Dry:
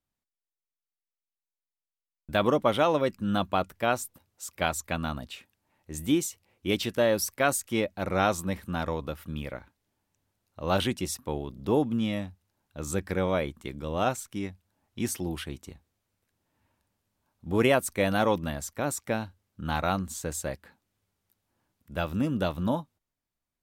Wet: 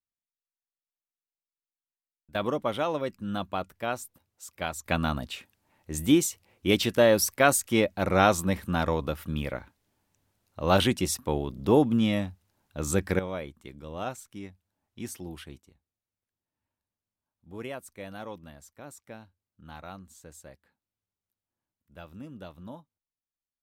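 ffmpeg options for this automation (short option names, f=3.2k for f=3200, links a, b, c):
-af "asetnsamples=n=441:p=0,asendcmd='2.35 volume volume -5dB;4.86 volume volume 4dB;13.19 volume volume -7.5dB;15.6 volume volume -15.5dB',volume=-15.5dB"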